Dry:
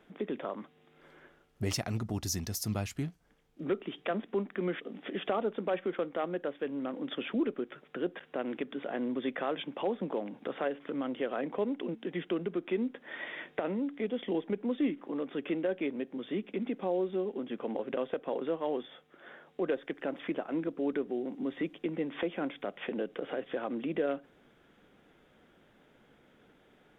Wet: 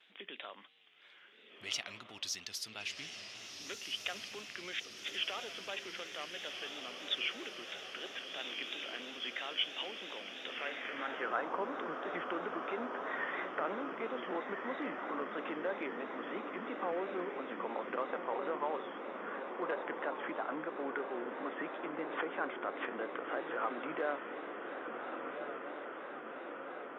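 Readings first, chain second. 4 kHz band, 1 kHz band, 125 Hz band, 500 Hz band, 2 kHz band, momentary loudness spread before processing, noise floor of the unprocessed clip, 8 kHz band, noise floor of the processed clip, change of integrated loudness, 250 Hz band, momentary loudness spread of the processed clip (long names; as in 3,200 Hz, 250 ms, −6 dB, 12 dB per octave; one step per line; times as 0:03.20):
+6.0 dB, +2.0 dB, −20.0 dB, −6.5 dB, +3.5 dB, 6 LU, −65 dBFS, can't be measured, −56 dBFS, −4.5 dB, −11.0 dB, 7 LU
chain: in parallel at +1 dB: brickwall limiter −27 dBFS, peak gain reduction 8.5 dB
on the sum: feedback delay with all-pass diffusion 1,451 ms, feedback 72%, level −5.5 dB
pitch vibrato 3 Hz 91 cents
hard clipping −16.5 dBFS, distortion −35 dB
band-pass filter sweep 3,100 Hz → 1,200 Hz, 0:10.43–0:11.44
level +2.5 dB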